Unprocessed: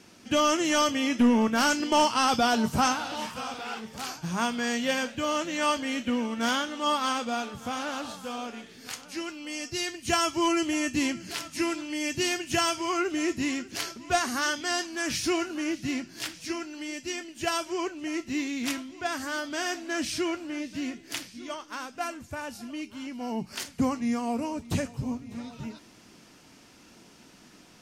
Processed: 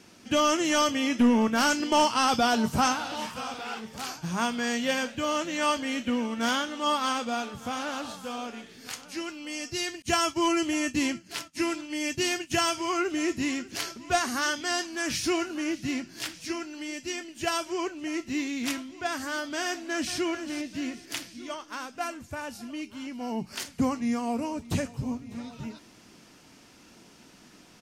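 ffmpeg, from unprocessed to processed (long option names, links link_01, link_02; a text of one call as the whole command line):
ffmpeg -i in.wav -filter_complex "[0:a]asettb=1/sr,asplit=3[link_01][link_02][link_03];[link_01]atrim=end=10.024[link_04];[link_02]atrim=start=10.02:end=12.71,asetpts=PTS-STARTPTS,afade=type=in:duration=0.004:curve=qsin,afade=type=out:start_time=2.686:duration=0.004:curve=qsin,agate=range=-33dB:threshold=-34dB:ratio=3:release=100:detection=peak[link_05];[link_03]atrim=start=12.706[link_06];[link_04][link_05]acrossfade=duration=0.004:curve1=hsin:curve2=qsin[link_07];[link_07][link_06]acrossfade=duration=0.004:curve1=qsin:curve2=hsin,asplit=2[link_08][link_09];[link_09]afade=type=in:start_time=19.63:duration=0.01,afade=type=out:start_time=20.17:duration=0.01,aecho=0:1:440|880|1320|1760:0.298538|0.104488|0.0365709|0.0127998[link_10];[link_08][link_10]amix=inputs=2:normalize=0" out.wav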